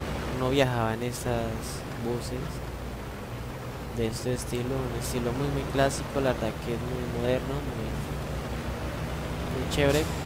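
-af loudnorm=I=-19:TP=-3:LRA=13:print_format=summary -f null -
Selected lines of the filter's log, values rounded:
Input Integrated:    -30.2 LUFS
Input True Peak:     -10.1 dBTP
Input LRA:             3.7 LU
Input Threshold:     -40.2 LUFS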